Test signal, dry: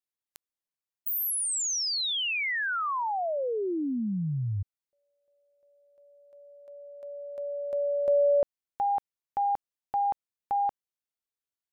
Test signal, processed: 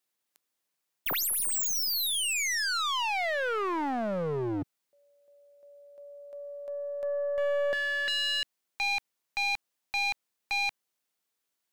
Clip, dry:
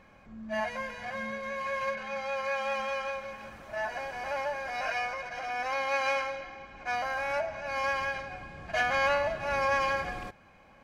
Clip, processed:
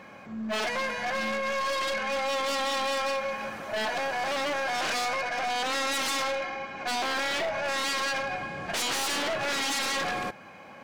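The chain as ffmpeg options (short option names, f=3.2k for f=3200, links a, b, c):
-af "aeval=exprs='0.0251*(abs(mod(val(0)/0.0251+3,4)-2)-1)':c=same,highpass=160,aeval=exprs='0.0398*(cos(1*acos(clip(val(0)/0.0398,-1,1)))-cos(1*PI/2))+0.00891*(cos(2*acos(clip(val(0)/0.0398,-1,1)))-cos(2*PI/2))+0.00501*(cos(5*acos(clip(val(0)/0.0398,-1,1)))-cos(5*PI/2))':c=same,volume=6.5dB"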